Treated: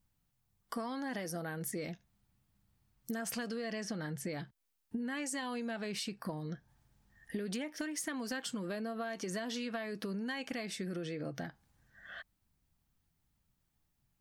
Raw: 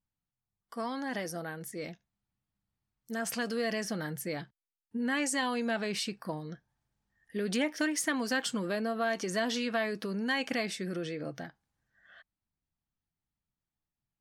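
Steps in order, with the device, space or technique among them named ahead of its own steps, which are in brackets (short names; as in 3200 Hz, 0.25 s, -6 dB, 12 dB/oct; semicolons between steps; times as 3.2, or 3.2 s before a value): 3.46–4.33 LPF 7700 Hz 12 dB/oct; ASMR close-microphone chain (low shelf 190 Hz +5.5 dB; compressor 10:1, threshold -45 dBFS, peak gain reduction 20.5 dB; high shelf 12000 Hz +5 dB); gain +8.5 dB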